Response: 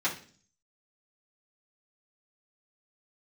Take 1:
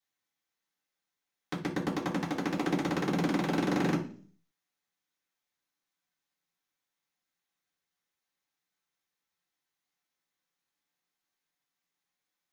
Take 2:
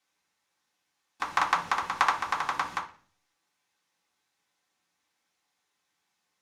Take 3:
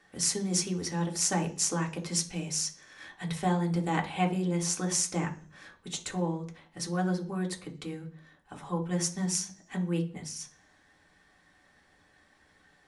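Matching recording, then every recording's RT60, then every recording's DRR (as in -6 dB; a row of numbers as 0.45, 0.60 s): 1; 0.45, 0.45, 0.45 s; -10.0, -4.5, 1.0 dB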